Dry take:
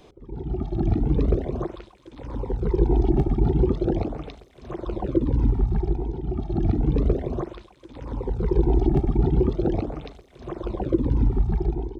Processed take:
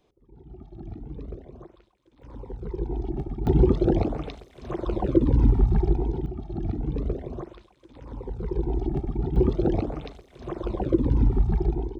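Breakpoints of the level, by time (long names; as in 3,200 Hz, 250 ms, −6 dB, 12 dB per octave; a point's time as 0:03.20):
−16.5 dB
from 0:02.22 −10 dB
from 0:03.47 +2 dB
from 0:06.26 −7 dB
from 0:09.36 0 dB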